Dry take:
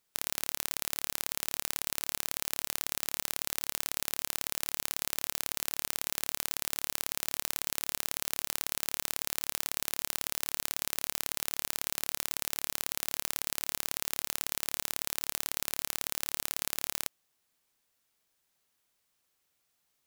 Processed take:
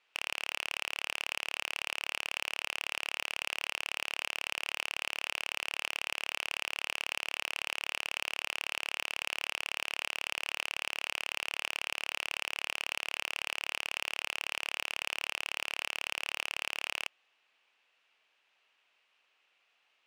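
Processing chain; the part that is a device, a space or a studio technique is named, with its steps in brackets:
megaphone (band-pass filter 540–2,800 Hz; parametric band 2,700 Hz +11 dB 0.54 octaves; hard clipping −29 dBFS, distortion −6 dB)
level +8.5 dB

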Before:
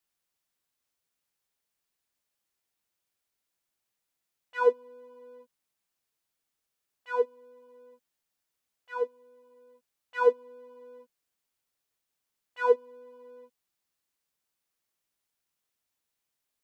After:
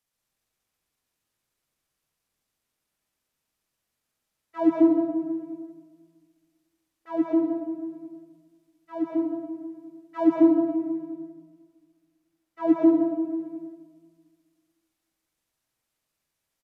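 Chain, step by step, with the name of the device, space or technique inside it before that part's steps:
0:10.94–0:12.69: high-shelf EQ 3,800 Hz −4 dB
monster voice (pitch shifter −7 semitones; low-shelf EQ 220 Hz +5.5 dB; convolution reverb RT60 1.6 s, pre-delay 117 ms, DRR −1.5 dB)

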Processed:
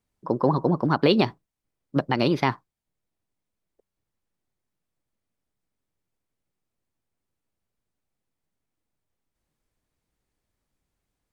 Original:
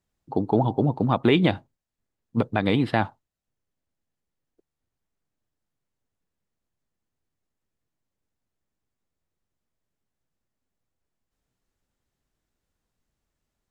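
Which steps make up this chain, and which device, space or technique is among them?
nightcore (speed change +21%)

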